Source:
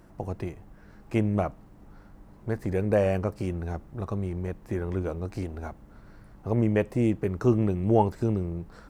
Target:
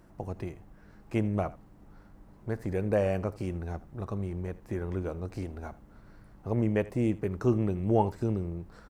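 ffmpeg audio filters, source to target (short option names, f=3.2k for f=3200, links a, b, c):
-af "aecho=1:1:80:0.112,volume=-3.5dB"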